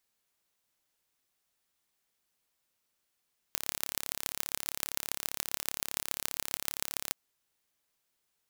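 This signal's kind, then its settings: pulse train 35.1 per s, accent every 5, -2.5 dBFS 3.58 s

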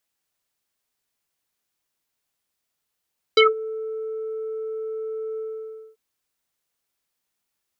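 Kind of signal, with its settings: synth note square A4 24 dB/octave, low-pass 840 Hz, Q 5.6, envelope 2.5 oct, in 0.13 s, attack 4.8 ms, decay 0.16 s, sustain -18.5 dB, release 0.58 s, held 2.01 s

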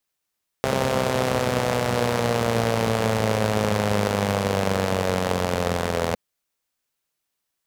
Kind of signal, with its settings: four-cylinder engine model, changing speed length 5.51 s, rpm 4000, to 2500, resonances 110/200/470 Hz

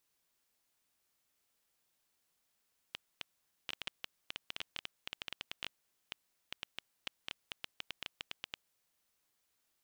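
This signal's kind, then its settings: random clicks 8.1 per s -21.5 dBFS 5.71 s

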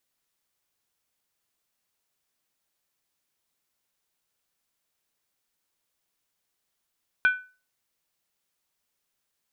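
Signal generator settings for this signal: skin hit, lowest mode 1.5 kHz, decay 0.34 s, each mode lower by 11 dB, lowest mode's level -14 dB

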